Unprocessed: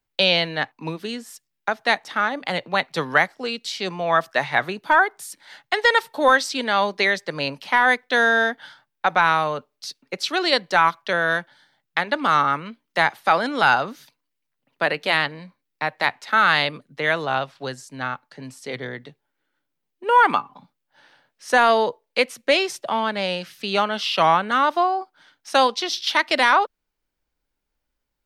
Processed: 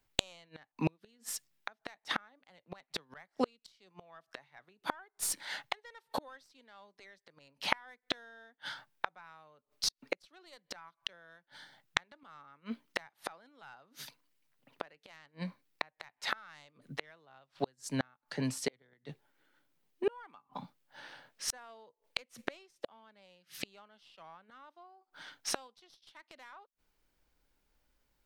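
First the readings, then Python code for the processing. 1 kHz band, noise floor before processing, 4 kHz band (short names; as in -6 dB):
-25.5 dB, -79 dBFS, -16.5 dB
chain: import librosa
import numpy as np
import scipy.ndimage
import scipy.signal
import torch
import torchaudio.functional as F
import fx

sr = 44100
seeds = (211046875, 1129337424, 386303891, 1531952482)

y = fx.tracing_dist(x, sr, depth_ms=0.042)
y = fx.gate_flip(y, sr, shuts_db=-22.0, range_db=-40)
y = y * librosa.db_to_amplitude(3.5)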